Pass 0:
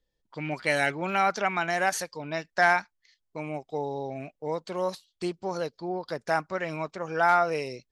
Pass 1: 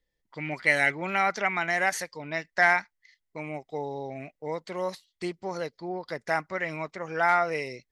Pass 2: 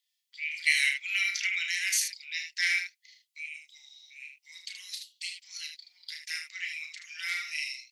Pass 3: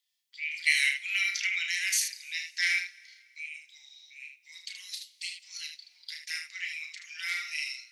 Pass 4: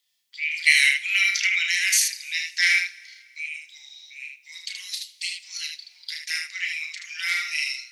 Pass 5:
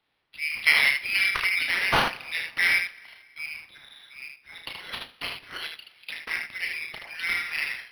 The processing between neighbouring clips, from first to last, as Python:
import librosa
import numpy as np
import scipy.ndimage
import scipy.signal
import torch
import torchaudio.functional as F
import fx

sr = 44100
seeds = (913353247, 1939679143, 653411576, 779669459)

y1 = fx.peak_eq(x, sr, hz=2000.0, db=12.0, octaves=0.27)
y1 = y1 * librosa.db_to_amplitude(-2.0)
y2 = scipy.signal.sosfilt(scipy.signal.butter(6, 2500.0, 'highpass', fs=sr, output='sos'), y1)
y2 = fx.room_early_taps(y2, sr, ms=(33, 77), db=(-6.5, -7.0))
y2 = y2 * librosa.db_to_amplitude(7.5)
y3 = fx.rev_plate(y2, sr, seeds[0], rt60_s=2.1, hf_ratio=0.95, predelay_ms=0, drr_db=19.0)
y4 = y3 + 10.0 ** (-18.0 / 20.0) * np.pad(y3, (int(77 * sr / 1000.0), 0))[:len(y3)]
y4 = y4 * librosa.db_to_amplitude(7.5)
y5 = np.interp(np.arange(len(y4)), np.arange(len(y4))[::6], y4[::6])